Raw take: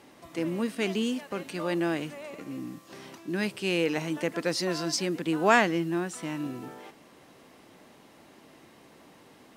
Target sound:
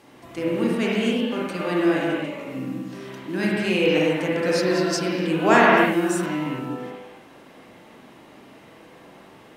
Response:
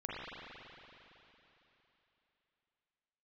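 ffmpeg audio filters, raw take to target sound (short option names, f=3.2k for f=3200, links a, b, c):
-filter_complex "[0:a]asettb=1/sr,asplit=3[a][b][c];[a]atrim=end=5.774[d];[b]atrim=start=5.77:end=6.26,asetpts=PTS-STARTPTS,afade=t=in:d=0.004:c=qsin,afade=t=out:st=0.486:d=0.004:c=qsin,highshelf=f=6.1k:g=12[e];[c]atrim=start=6.256[f];[d][e]acrossfade=d=0.004:c1=hsin:c2=qsin[g];[g][f]acrossfade=d=0.004:c1=qsin:c2=hsin[h];[1:a]atrim=start_sample=2205,afade=t=out:st=0.36:d=0.01,atrim=end_sample=16317[i];[h][i]afir=irnorm=-1:irlink=0,volume=5.5dB"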